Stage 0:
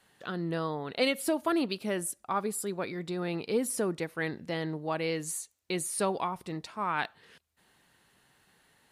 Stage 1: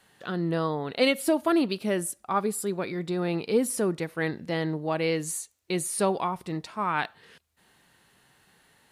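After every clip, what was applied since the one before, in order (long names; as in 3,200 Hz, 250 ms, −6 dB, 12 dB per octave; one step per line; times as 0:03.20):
harmonic and percussive parts rebalanced percussive −4 dB
level +5.5 dB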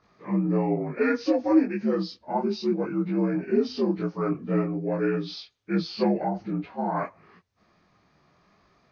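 partials spread apart or drawn together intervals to 80%
spectral tilt −2.5 dB per octave
micro pitch shift up and down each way 24 cents
level +3.5 dB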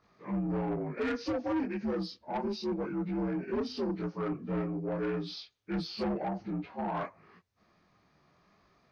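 soft clipping −23.5 dBFS, distortion −10 dB
level −4 dB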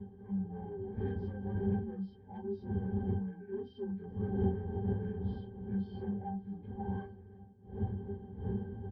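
wind on the microphone 290 Hz −30 dBFS
resonances in every octave G, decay 0.15 s
single-tap delay 1,143 ms −24 dB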